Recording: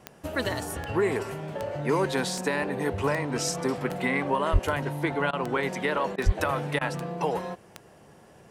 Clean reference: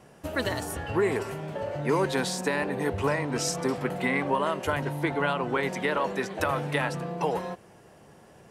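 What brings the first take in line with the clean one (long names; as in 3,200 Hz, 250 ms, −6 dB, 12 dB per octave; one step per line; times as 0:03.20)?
click removal
0:04.52–0:04.64: high-pass filter 140 Hz 24 dB per octave
0:06.25–0:06.37: high-pass filter 140 Hz 24 dB per octave
repair the gap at 0:05.31/0:06.16/0:06.79, 20 ms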